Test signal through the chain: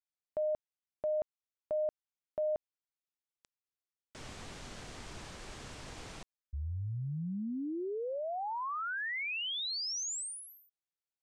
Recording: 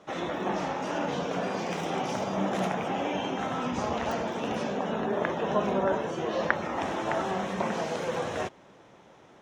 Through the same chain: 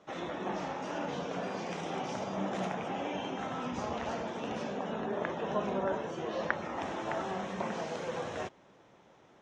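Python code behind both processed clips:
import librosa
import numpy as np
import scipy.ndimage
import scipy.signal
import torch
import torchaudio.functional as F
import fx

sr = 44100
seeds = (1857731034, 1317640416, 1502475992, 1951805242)

y = scipy.signal.sosfilt(scipy.signal.butter(4, 8300.0, 'lowpass', fs=sr, output='sos'), x)
y = y * librosa.db_to_amplitude(-6.0)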